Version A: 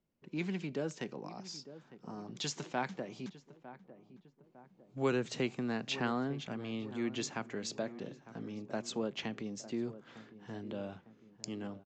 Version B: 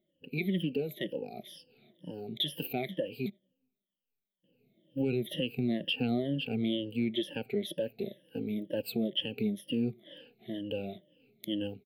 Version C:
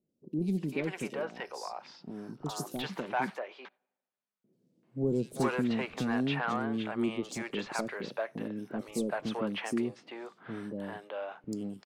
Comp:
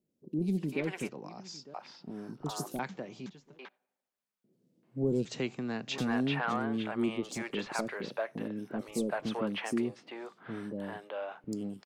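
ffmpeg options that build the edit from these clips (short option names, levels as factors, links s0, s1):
-filter_complex "[0:a]asplit=3[s0][s1][s2];[2:a]asplit=4[s3][s4][s5][s6];[s3]atrim=end=1.092[s7];[s0]atrim=start=1.088:end=1.742[s8];[s4]atrim=start=1.738:end=2.792[s9];[s1]atrim=start=2.788:end=3.592[s10];[s5]atrim=start=3.588:end=5.252[s11];[s2]atrim=start=5.248:end=5.982[s12];[s6]atrim=start=5.978[s13];[s7][s8]acrossfade=d=0.004:c1=hsin:c2=hsin[s14];[s14][s9]acrossfade=d=0.004:c1=hsin:c2=hsin[s15];[s15][s10]acrossfade=d=0.004:c1=hsin:c2=hsin[s16];[s16][s11]acrossfade=d=0.004:c1=hsin:c2=hsin[s17];[s17][s12]acrossfade=d=0.004:c1=hsin:c2=hsin[s18];[s18][s13]acrossfade=d=0.004:c1=hsin:c2=hsin"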